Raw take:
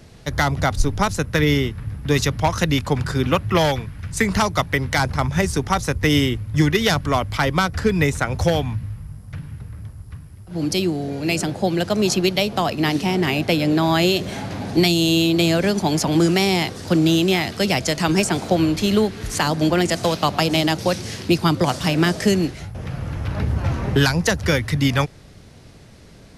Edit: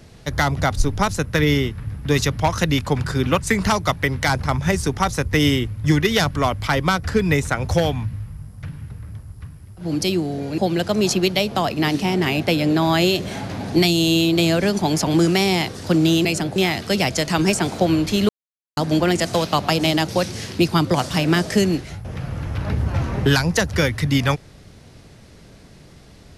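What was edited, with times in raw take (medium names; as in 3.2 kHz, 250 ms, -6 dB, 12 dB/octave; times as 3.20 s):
3.40–4.10 s: delete
11.28–11.59 s: move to 17.26 s
18.99–19.47 s: mute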